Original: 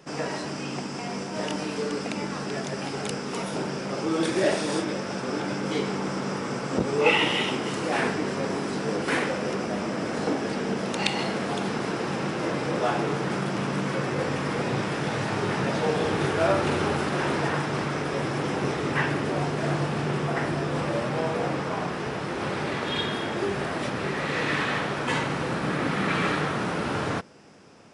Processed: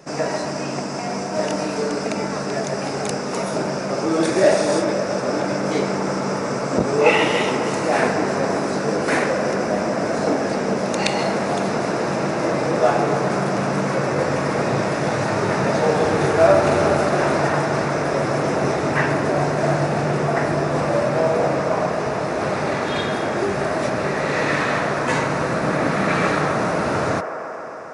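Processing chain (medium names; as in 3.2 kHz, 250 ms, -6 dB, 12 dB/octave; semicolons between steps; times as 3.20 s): graphic EQ with 31 bands 630 Hz +7 dB, 3.15 kHz -9 dB, 6.3 kHz +4 dB; feedback echo behind a band-pass 135 ms, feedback 83%, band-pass 840 Hz, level -9 dB; trim +5 dB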